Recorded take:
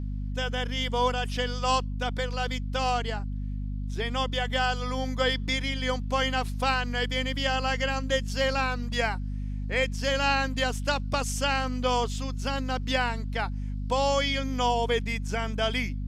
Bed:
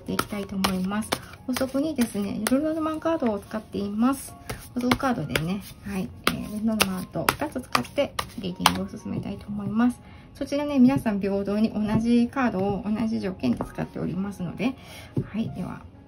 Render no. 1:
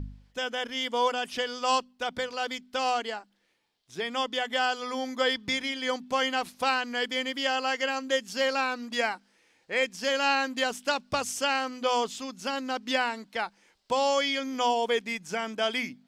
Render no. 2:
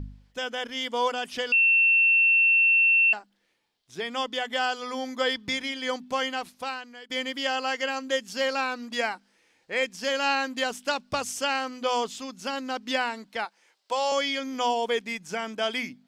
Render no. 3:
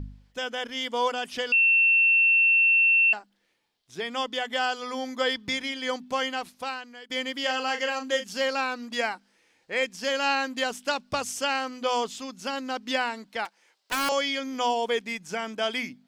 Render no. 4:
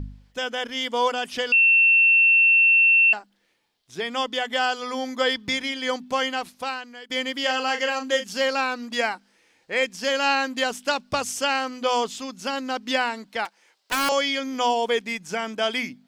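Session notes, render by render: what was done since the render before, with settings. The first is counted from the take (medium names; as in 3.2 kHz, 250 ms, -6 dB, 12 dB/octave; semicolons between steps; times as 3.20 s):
de-hum 50 Hz, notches 5
1.52–3.13 s: bleep 2.7 kHz -16.5 dBFS; 6.08–7.10 s: fade out, to -22 dB; 13.45–14.12 s: high-pass 460 Hz
7.40–8.39 s: doubling 39 ms -8 dB; 13.45–14.09 s: self-modulated delay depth 0.83 ms
trim +3.5 dB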